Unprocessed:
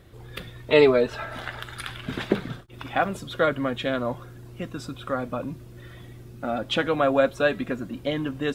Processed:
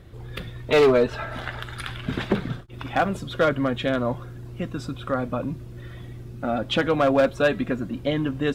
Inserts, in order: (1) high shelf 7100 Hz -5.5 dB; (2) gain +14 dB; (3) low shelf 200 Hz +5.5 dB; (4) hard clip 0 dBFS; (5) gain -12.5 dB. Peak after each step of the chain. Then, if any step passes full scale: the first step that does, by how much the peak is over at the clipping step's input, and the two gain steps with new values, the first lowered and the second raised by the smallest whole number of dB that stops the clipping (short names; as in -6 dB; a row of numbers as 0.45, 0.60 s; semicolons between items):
-4.0, +10.0, +10.0, 0.0, -12.5 dBFS; step 2, 10.0 dB; step 2 +4 dB, step 5 -2.5 dB